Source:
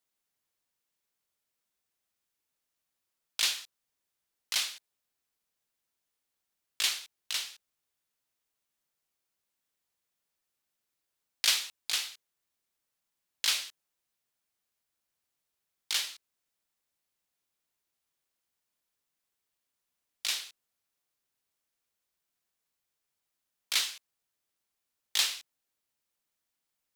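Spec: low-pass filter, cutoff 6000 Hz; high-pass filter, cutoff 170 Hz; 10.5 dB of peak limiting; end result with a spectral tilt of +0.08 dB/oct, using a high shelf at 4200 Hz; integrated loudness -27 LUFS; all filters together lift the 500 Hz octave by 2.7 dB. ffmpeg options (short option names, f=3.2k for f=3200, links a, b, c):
-af "highpass=170,lowpass=6k,equalizer=f=500:t=o:g=3.5,highshelf=f=4.2k:g=5.5,volume=6.5dB,alimiter=limit=-13.5dB:level=0:latency=1"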